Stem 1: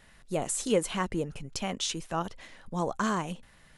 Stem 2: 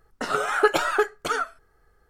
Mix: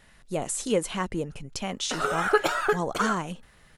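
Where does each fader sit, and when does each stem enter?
+1.0 dB, -2.5 dB; 0.00 s, 1.70 s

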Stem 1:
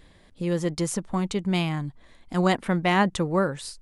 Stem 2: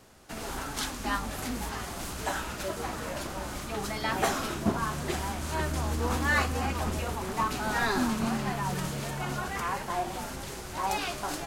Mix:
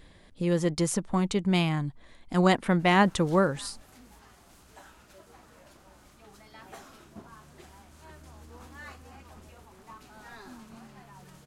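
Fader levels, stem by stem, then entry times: 0.0 dB, -19.5 dB; 0.00 s, 2.50 s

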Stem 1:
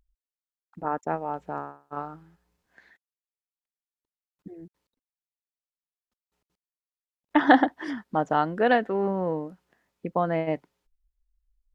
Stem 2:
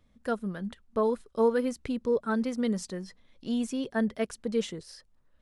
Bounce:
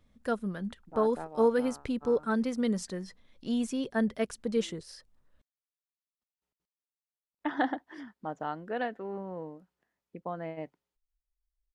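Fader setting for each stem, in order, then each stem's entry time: -12.0 dB, -0.5 dB; 0.10 s, 0.00 s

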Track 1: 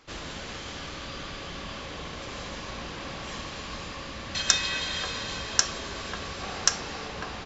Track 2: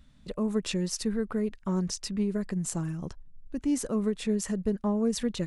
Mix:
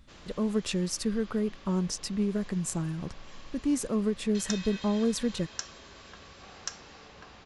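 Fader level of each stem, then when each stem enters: -14.0 dB, 0.0 dB; 0.00 s, 0.00 s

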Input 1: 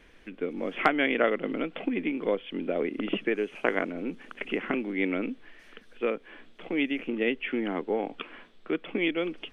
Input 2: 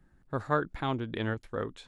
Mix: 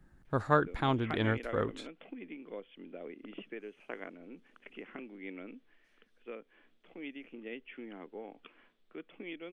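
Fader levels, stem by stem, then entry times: -16.5 dB, +1.5 dB; 0.25 s, 0.00 s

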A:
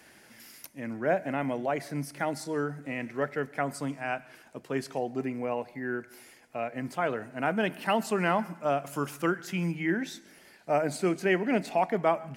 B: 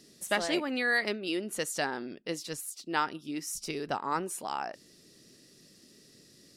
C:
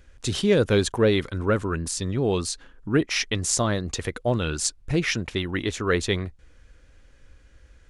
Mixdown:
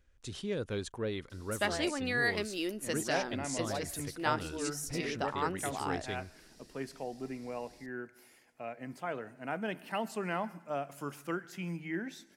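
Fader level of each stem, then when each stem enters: -8.5 dB, -3.0 dB, -16.0 dB; 2.05 s, 1.30 s, 0.00 s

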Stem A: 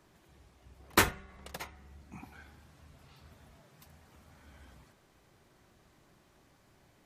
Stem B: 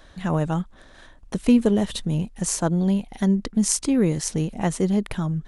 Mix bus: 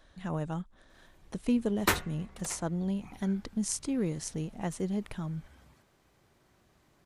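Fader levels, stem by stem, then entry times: -2.0 dB, -11.0 dB; 0.90 s, 0.00 s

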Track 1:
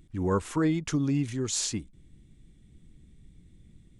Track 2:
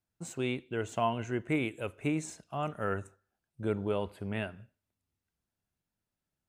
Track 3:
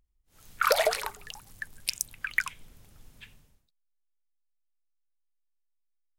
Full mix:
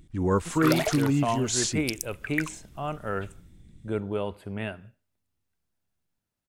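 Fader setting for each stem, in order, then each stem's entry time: +2.5 dB, +2.0 dB, -3.5 dB; 0.00 s, 0.25 s, 0.00 s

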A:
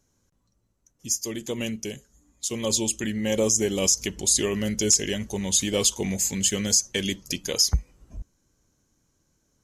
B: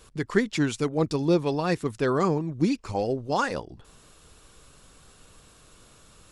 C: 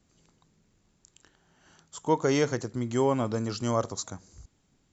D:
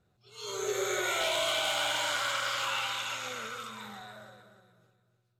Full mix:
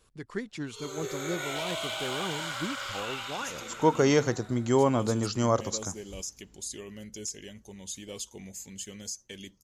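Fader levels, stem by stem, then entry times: -17.0 dB, -12.0 dB, +2.0 dB, -4.5 dB; 2.35 s, 0.00 s, 1.75 s, 0.35 s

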